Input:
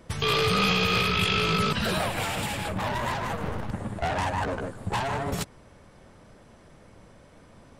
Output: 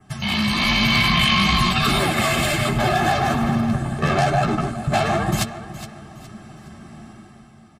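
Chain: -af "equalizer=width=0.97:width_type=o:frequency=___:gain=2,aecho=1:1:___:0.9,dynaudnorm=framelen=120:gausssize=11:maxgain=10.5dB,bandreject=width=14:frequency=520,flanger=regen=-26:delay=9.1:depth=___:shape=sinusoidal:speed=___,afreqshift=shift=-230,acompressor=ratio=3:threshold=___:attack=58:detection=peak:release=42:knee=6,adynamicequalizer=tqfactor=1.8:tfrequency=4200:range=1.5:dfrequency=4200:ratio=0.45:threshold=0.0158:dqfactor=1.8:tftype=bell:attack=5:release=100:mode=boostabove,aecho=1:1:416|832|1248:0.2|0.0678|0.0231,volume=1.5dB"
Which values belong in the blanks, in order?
1500, 2.1, 4.7, 1.1, -22dB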